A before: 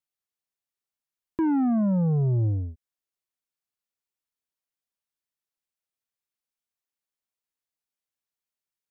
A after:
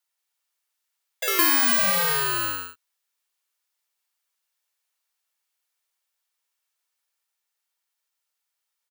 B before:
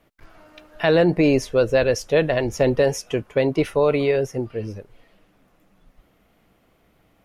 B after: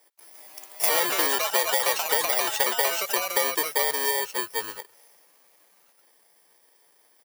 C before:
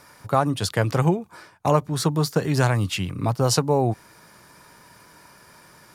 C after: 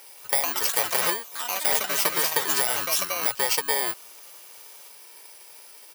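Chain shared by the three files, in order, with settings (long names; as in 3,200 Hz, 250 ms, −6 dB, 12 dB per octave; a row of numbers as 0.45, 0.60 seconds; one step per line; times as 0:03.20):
samples in bit-reversed order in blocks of 32 samples
high-pass filter 710 Hz 12 dB per octave
comb filter 2.2 ms, depth 30%
downward compressor 6 to 1, threshold −24 dBFS
delay with pitch and tempo change per echo 176 ms, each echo +4 semitones, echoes 3
normalise the peak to −6 dBFS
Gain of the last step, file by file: +9.5, +3.0, +4.5 decibels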